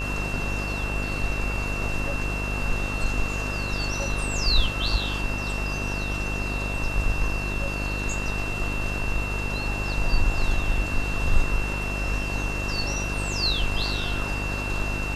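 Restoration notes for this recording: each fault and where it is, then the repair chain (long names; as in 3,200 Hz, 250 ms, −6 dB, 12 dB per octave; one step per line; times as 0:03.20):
mains buzz 50 Hz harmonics 39 −30 dBFS
whistle 2,700 Hz −31 dBFS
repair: notch filter 2,700 Hz, Q 30
hum removal 50 Hz, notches 39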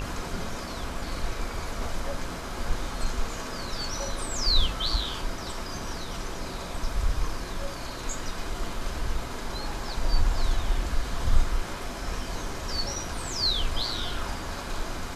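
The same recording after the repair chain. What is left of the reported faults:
none of them is left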